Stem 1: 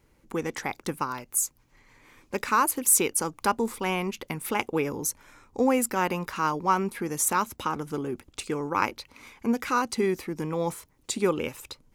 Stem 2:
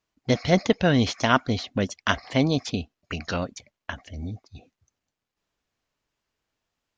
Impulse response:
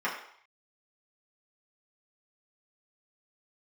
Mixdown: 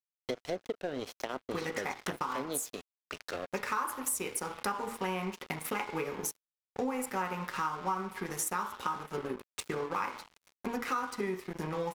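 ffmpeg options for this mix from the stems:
-filter_complex "[0:a]highpass=49,adelay=1200,volume=0.944,asplit=2[s0][s1];[s1]volume=0.501[s2];[1:a]lowshelf=f=280:t=q:w=1.5:g=-13,acrossover=split=500[s3][s4];[s4]acompressor=threshold=0.02:ratio=5[s5];[s3][s5]amix=inputs=2:normalize=0,volume=0.891,asplit=2[s6][s7];[s7]volume=0.119[s8];[2:a]atrim=start_sample=2205[s9];[s2][s8]amix=inputs=2:normalize=0[s10];[s10][s9]afir=irnorm=-1:irlink=0[s11];[s0][s6][s11]amix=inputs=3:normalize=0,aeval=exprs='sgn(val(0))*max(abs(val(0))-0.0158,0)':c=same,acompressor=threshold=0.0251:ratio=5"

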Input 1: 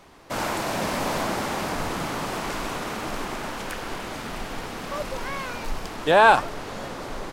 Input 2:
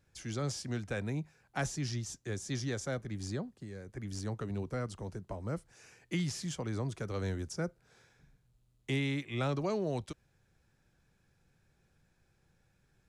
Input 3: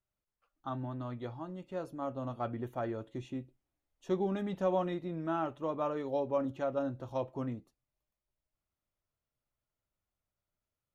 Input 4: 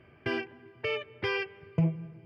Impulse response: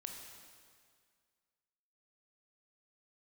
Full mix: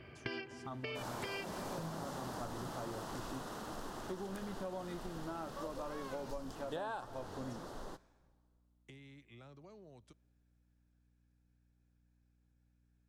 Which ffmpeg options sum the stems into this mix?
-filter_complex "[0:a]equalizer=f=2300:t=o:w=0.46:g=-15,adelay=650,volume=0.2,asplit=2[s0][s1];[s1]volume=0.2[s2];[1:a]acompressor=threshold=0.01:ratio=4,aeval=exprs='val(0)+0.00141*(sin(2*PI*60*n/s)+sin(2*PI*2*60*n/s)/2+sin(2*PI*3*60*n/s)/3+sin(2*PI*4*60*n/s)/4+sin(2*PI*5*60*n/s)/5)':c=same,volume=0.178,asplit=2[s3][s4];[s4]volume=0.0944[s5];[2:a]volume=0.447,asplit=2[s6][s7];[3:a]equalizer=f=4500:t=o:w=0.83:g=10.5,acompressor=threshold=0.0282:ratio=6,volume=1.33[s8];[s7]apad=whole_len=99569[s9];[s8][s9]sidechaincompress=threshold=0.00398:ratio=8:attack=7.4:release=244[s10];[4:a]atrim=start_sample=2205[s11];[s2][s5]amix=inputs=2:normalize=0[s12];[s12][s11]afir=irnorm=-1:irlink=0[s13];[s0][s3][s6][s10][s13]amix=inputs=5:normalize=0,acompressor=threshold=0.0126:ratio=12"

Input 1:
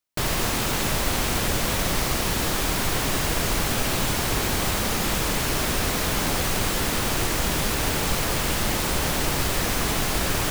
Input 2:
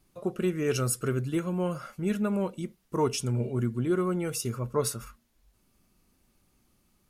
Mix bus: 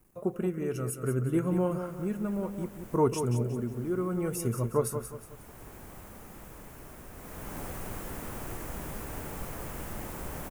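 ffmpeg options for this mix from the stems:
-filter_complex "[0:a]adelay=1300,volume=0.224,afade=t=in:st=7.14:d=0.46:silence=0.375837[s0];[1:a]tremolo=f=0.66:d=0.58,acrusher=bits=10:mix=0:aa=0.000001,volume=1.26,asplit=3[s1][s2][s3];[s2]volume=0.376[s4];[s3]apad=whole_len=520433[s5];[s0][s5]sidechaincompress=threshold=0.02:ratio=8:attack=49:release=937[s6];[s4]aecho=0:1:181|362|543|724|905:1|0.37|0.137|0.0507|0.0187[s7];[s6][s1][s7]amix=inputs=3:normalize=0,equalizer=f=4100:w=0.82:g=-15"

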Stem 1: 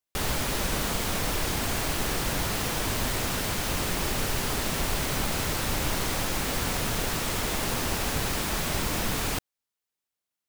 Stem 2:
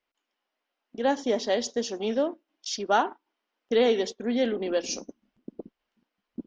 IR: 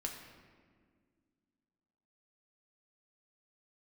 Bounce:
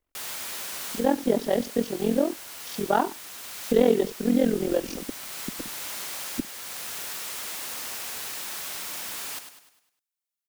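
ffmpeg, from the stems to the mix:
-filter_complex "[0:a]highpass=f=1300:p=1,highshelf=f=6600:g=5.5,volume=0.501,asplit=2[s0][s1];[s1]volume=0.355[s2];[1:a]aemphasis=mode=reproduction:type=riaa,tremolo=f=43:d=0.889,volume=1.33,asplit=2[s3][s4];[s4]apad=whole_len=462453[s5];[s0][s5]sidechaincompress=threshold=0.0251:ratio=8:attack=28:release=722[s6];[s2]aecho=0:1:101|202|303|404|505|606:1|0.46|0.212|0.0973|0.0448|0.0206[s7];[s6][s3][s7]amix=inputs=3:normalize=0"

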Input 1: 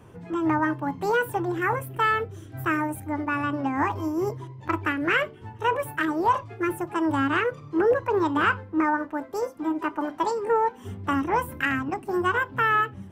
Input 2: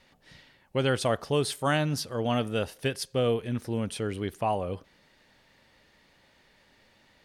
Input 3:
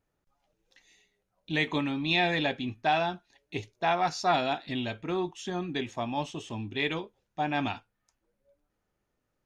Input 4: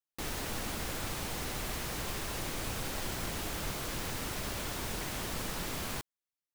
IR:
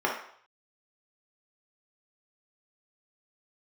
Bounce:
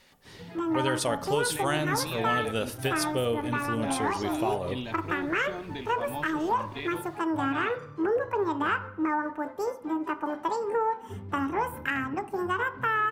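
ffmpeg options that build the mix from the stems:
-filter_complex "[0:a]adelay=250,volume=0.708,asplit=2[s0][s1];[s1]volume=0.0794[s2];[1:a]highshelf=f=5200:g=11,volume=0.944,asplit=2[s3][s4];[s4]volume=0.0841[s5];[2:a]bandreject=f=60:t=h:w=6,bandreject=f=120:t=h:w=6,bandreject=f=180:t=h:w=6,alimiter=limit=0.0708:level=0:latency=1:release=289,volume=0.708[s6];[3:a]lowpass=1100,adelay=850,volume=0.237[s7];[4:a]atrim=start_sample=2205[s8];[s2][s5]amix=inputs=2:normalize=0[s9];[s9][s8]afir=irnorm=-1:irlink=0[s10];[s0][s3][s6][s7][s10]amix=inputs=5:normalize=0,acompressor=threshold=0.0501:ratio=2"

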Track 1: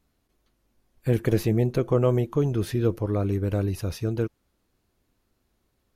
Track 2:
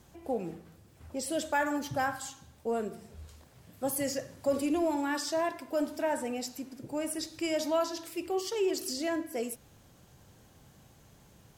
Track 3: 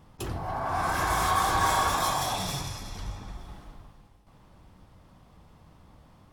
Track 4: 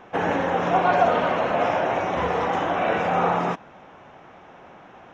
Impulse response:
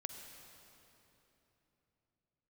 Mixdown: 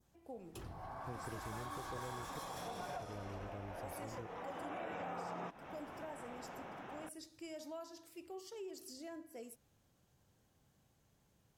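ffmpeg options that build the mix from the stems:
-filter_complex "[0:a]volume=0.112,asplit=3[s0][s1][s2];[s0]atrim=end=2.39,asetpts=PTS-STARTPTS,afade=t=out:st=2.386:d=0.004:c=hsin[s3];[s1]atrim=start=2.39:end=3,asetpts=PTS-STARTPTS,volume=0[s4];[s2]atrim=start=3,asetpts=PTS-STARTPTS,afade=t=in:d=0.004:c=hsin[s5];[s3][s4][s5]concat=n=3:v=0:a=1,asplit=2[s6][s7];[1:a]adynamicequalizer=threshold=0.00355:dfrequency=2600:dqfactor=0.86:tfrequency=2600:tqfactor=0.86:attack=5:release=100:ratio=0.375:range=2.5:mode=cutabove:tftype=bell,volume=0.168[s8];[2:a]adelay=350,volume=0.188[s9];[3:a]acompressor=threshold=0.0355:ratio=6,adelay=1950,volume=0.75[s10];[s7]apad=whole_len=312549[s11];[s10][s11]sidechaincompress=threshold=0.00355:ratio=8:attack=7.7:release=764[s12];[s6][s8][s9][s12]amix=inputs=4:normalize=0,acompressor=threshold=0.00631:ratio=3"

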